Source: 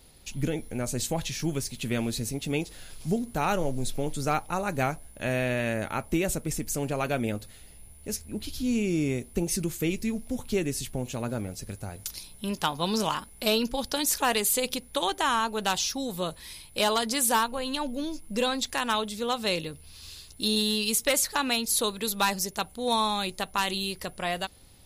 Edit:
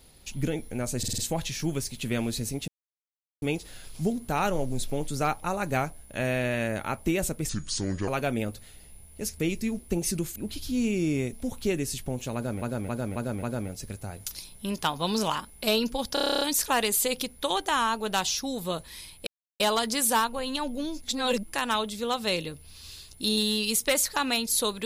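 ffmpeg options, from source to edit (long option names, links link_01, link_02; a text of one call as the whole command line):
ffmpeg -i in.wav -filter_complex "[0:a]asplit=28[link_01][link_02][link_03][link_04][link_05][link_06][link_07][link_08][link_09][link_10][link_11][link_12][link_13][link_14][link_15][link_16][link_17][link_18][link_19][link_20][link_21][link_22][link_23][link_24][link_25][link_26][link_27][link_28];[link_01]atrim=end=1.032[link_29];[link_02]atrim=start=0.978:end=1.032[link_30];[link_03]atrim=start=0.978:end=1.032[link_31];[link_04]atrim=start=0.978:end=1.032[link_32];[link_05]atrim=start=0.978:end=2.48,asetpts=PTS-STARTPTS,afade=type=out:start_time=1.498:duration=0.004:curve=hsin,apad=pad_dur=0.74[link_33];[link_06]atrim=start=2.48:end=6.554,asetpts=PTS-STARTPTS,afade=type=in:duration=0.004:curve=hsin[link_34];[link_07]atrim=start=6.55:end=6.95,asetpts=PTS-STARTPTS,asetrate=29988,aresample=44100,atrim=end_sample=25941,asetpts=PTS-STARTPTS[link_35];[link_08]atrim=start=6.946:end=8.272[link_36];[link_09]atrim=start=9.808:end=10.202[link_37];[link_10]atrim=start=9.238:end=9.812[link_38];[link_11]atrim=start=8.268:end=9.242[link_39];[link_12]atrim=start=10.198:end=11.492[link_40];[link_13]atrim=start=11.218:end=11.492[link_41];[link_14]atrim=start=11.218:end=11.492[link_42];[link_15]atrim=start=11.218:end=11.492[link_43];[link_16]atrim=start=11.218:end=13.962[link_44];[link_17]atrim=start=13.928:end=13.962[link_45];[link_18]atrim=start=13.928:end=13.962[link_46];[link_19]atrim=start=13.928:end=13.962[link_47];[link_20]atrim=start=13.928:end=13.962[link_48];[link_21]atrim=start=13.928:end=13.962[link_49];[link_22]atrim=start=13.928:end=13.962[link_50];[link_23]atrim=start=13.928:end=13.962[link_51];[link_24]atrim=start=13.928:end=13.962[link_52];[link_25]atrim=start=13.928:end=16.79,asetpts=PTS-STARTPTS,afade=type=out:start_time=2.858:duration=0.004:curve=hsin,apad=pad_dur=0.33[link_53];[link_26]atrim=start=16.79:end=18.212,asetpts=PTS-STARTPTS,afade=type=in:duration=0.004:curve=hsin[link_54];[link_27]atrim=start=18.208:end=18.722,asetpts=PTS-STARTPTS,areverse[link_55];[link_28]atrim=start=18.718[link_56];[link_29][link_30]acrossfade=duration=0.004:curve1=hsin:curve2=hsin[link_57];[link_57][link_31]acrossfade=duration=0.004:curve1=hsin:curve2=hsin[link_58];[link_58][link_32]acrossfade=duration=0.004:curve1=hsin:curve2=hsin[link_59];[link_33][link_34]concat=n=2:v=0:a=1[link_60];[link_59][link_60]acrossfade=duration=0.004:curve1=hsin:curve2=hsin[link_61];[link_61][link_35]acrossfade=duration=0.004:curve1=hsin:curve2=hsin[link_62];[link_62][link_36]acrossfade=duration=0.004:curve1=hsin:curve2=hsin[link_63];[link_63][link_37]acrossfade=duration=0.004:curve1=hsin:curve2=hsin[link_64];[link_64][link_38]acrossfade=duration=0.004:curve1=hsin:curve2=hsin[link_65];[link_65][link_39]acrossfade=duration=0.004:curve1=hsin:curve2=hsin[link_66];[link_66][link_40]acrossfade=duration=0.004:curve1=hsin:curve2=hsin[link_67];[link_67][link_41]acrossfade=duration=0.004:curve1=hsin:curve2=hsin[link_68];[link_68][link_42]acrossfade=duration=0.004:curve1=hsin:curve2=hsin[link_69];[link_69][link_43]acrossfade=duration=0.004:curve1=hsin:curve2=hsin[link_70];[link_70][link_44]acrossfade=duration=0.004:curve1=hsin:curve2=hsin[link_71];[link_71][link_45]acrossfade=duration=0.004:curve1=hsin:curve2=hsin[link_72];[link_72][link_46]acrossfade=duration=0.004:curve1=hsin:curve2=hsin[link_73];[link_73][link_47]acrossfade=duration=0.004:curve1=hsin:curve2=hsin[link_74];[link_74][link_48]acrossfade=duration=0.004:curve1=hsin:curve2=hsin[link_75];[link_75][link_49]acrossfade=duration=0.004:curve1=hsin:curve2=hsin[link_76];[link_76][link_50]acrossfade=duration=0.004:curve1=hsin:curve2=hsin[link_77];[link_77][link_51]acrossfade=duration=0.004:curve1=hsin:curve2=hsin[link_78];[link_78][link_52]acrossfade=duration=0.004:curve1=hsin:curve2=hsin[link_79];[link_53][link_54]concat=n=2:v=0:a=1[link_80];[link_79][link_80]acrossfade=duration=0.004:curve1=hsin:curve2=hsin[link_81];[link_81][link_55]acrossfade=duration=0.004:curve1=hsin:curve2=hsin[link_82];[link_82][link_56]acrossfade=duration=0.004:curve1=hsin:curve2=hsin" out.wav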